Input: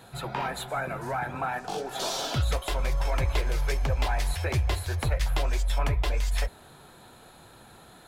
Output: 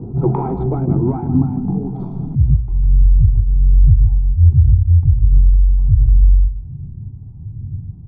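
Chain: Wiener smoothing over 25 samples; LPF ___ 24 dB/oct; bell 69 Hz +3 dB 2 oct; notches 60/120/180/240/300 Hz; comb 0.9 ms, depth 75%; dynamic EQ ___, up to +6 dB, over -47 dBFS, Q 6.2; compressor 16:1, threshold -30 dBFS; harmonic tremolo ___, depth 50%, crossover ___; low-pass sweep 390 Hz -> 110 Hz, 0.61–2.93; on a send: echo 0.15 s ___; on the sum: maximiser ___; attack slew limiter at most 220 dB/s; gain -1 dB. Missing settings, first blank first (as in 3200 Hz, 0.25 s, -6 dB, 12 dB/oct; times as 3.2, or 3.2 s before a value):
8600 Hz, 830 Hz, 1.3 Hz, 420 Hz, -11 dB, +23 dB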